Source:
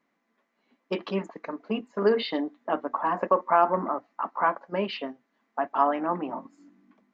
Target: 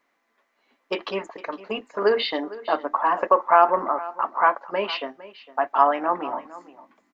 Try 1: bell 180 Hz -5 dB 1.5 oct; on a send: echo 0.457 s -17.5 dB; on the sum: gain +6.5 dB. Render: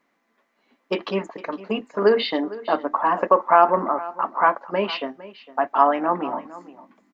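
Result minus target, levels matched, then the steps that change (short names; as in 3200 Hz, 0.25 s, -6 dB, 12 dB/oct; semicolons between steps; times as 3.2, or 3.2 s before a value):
250 Hz band +4.5 dB
change: bell 180 Hz -15.5 dB 1.5 oct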